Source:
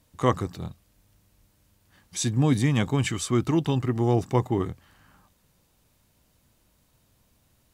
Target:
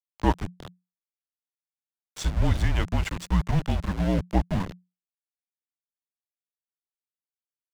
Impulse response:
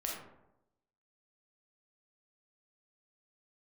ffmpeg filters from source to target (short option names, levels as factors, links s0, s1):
-af "aeval=exprs='val(0)*gte(abs(val(0)),0.0447)':c=same,afreqshift=-180,aemphasis=mode=reproduction:type=50kf"